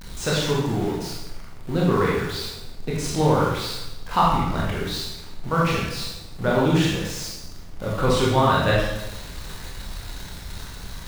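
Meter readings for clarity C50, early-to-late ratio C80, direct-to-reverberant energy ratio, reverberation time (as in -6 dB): 0.0 dB, 3.0 dB, -5.5 dB, 0.95 s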